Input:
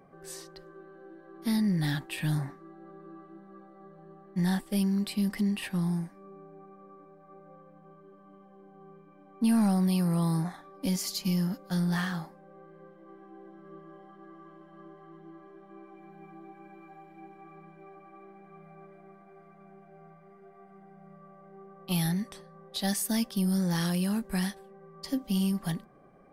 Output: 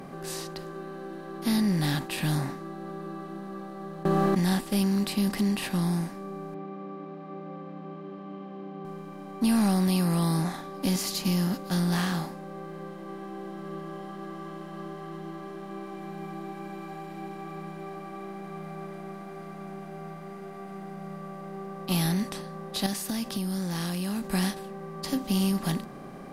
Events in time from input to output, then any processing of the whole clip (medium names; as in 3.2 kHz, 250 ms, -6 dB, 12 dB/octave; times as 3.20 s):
4.05–4.53 s: level flattener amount 100%
6.54–8.85 s: cabinet simulation 110–3300 Hz, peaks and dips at 270 Hz +7 dB, 920 Hz -4 dB, 1.5 kHz -7 dB
22.86–24.26 s: compression, threshold -34 dBFS
whole clip: spectral levelling over time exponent 0.6; band-stop 1.8 kHz, Q 20